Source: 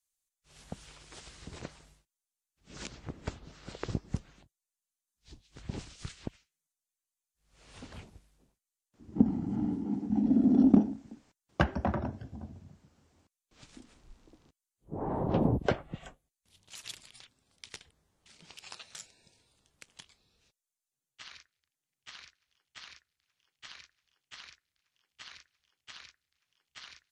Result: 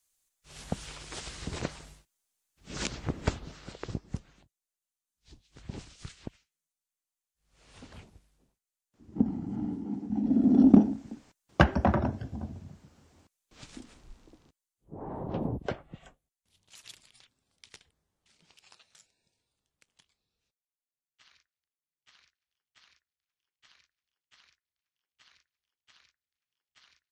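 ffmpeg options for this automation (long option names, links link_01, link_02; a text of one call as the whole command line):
ffmpeg -i in.wav -af "volume=17dB,afade=type=out:start_time=3.31:duration=0.45:silence=0.281838,afade=type=in:start_time=10.19:duration=0.87:silence=0.398107,afade=type=out:start_time=13.76:duration=1.2:silence=0.266073,afade=type=out:start_time=17.72:duration=1.23:silence=0.421697" out.wav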